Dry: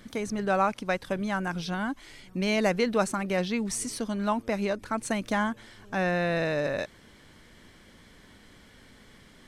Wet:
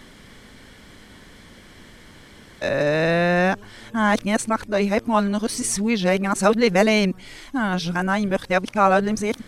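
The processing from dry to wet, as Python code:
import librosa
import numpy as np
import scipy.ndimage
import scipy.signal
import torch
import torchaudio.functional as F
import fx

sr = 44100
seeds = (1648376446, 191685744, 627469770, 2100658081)

y = x[::-1].copy()
y = y * 10.0 ** (8.0 / 20.0)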